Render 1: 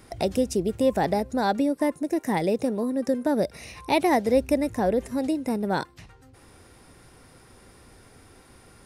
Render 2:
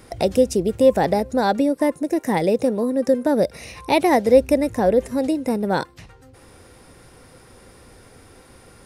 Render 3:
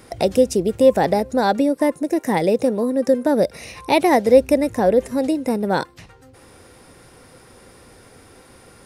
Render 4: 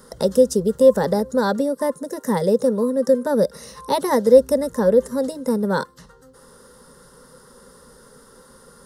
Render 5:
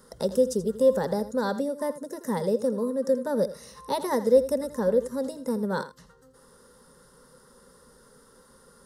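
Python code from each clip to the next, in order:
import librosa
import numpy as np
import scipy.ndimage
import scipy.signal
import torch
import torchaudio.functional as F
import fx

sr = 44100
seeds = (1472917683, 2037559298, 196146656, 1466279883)

y1 = fx.peak_eq(x, sr, hz=510.0, db=5.5, octaves=0.25)
y1 = y1 * librosa.db_to_amplitude(4.0)
y2 = fx.low_shelf(y1, sr, hz=79.0, db=-7.0)
y2 = y2 * librosa.db_to_amplitude(1.5)
y3 = fx.fixed_phaser(y2, sr, hz=480.0, stages=8)
y3 = y3 * librosa.db_to_amplitude(1.5)
y4 = y3 + 10.0 ** (-14.0 / 20.0) * np.pad(y3, (int(82 * sr / 1000.0), 0))[:len(y3)]
y4 = y4 * librosa.db_to_amplitude(-7.5)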